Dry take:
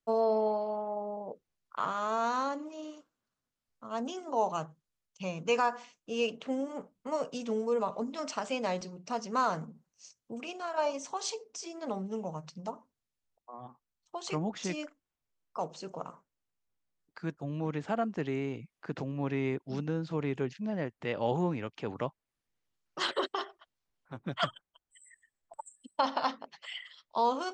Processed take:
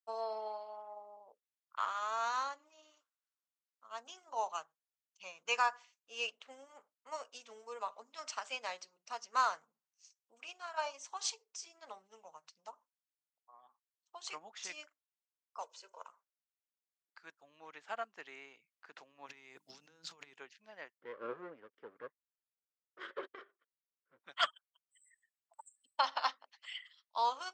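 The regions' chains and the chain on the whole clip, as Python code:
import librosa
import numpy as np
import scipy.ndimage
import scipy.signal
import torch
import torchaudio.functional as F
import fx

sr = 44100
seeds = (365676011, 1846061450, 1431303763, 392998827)

y = fx.chain(x, sr, fx.highpass(hz=330.0, slope=12),
    fx.comb(ms=2.0, depth=0.61),
    fx.band_squash(depth_pct=40), at=(15.62, 16.08))
y = fx.chain(y, sr, fx.bass_treble(bass_db=11, treble_db=12),
    fx.over_compress(threshold_db=-30.0, ratio=-0.5),
    fx.hum_notches(base_hz=50, count=6), at=(19.26, 20.34))
y = fx.chain(y, sr, fx.lower_of_two(delay_ms=0.58),
    fx.lowpass(hz=1300.0, slope=12),
    fx.low_shelf_res(hz=600.0, db=6.5, q=3.0), at=(20.98, 24.2))
y = scipy.signal.sosfilt(scipy.signal.butter(2, 1100.0, 'highpass', fs=sr, output='sos'), y)
y = fx.upward_expand(y, sr, threshold_db=-55.0, expansion=1.5)
y = y * librosa.db_to_amplitude(2.5)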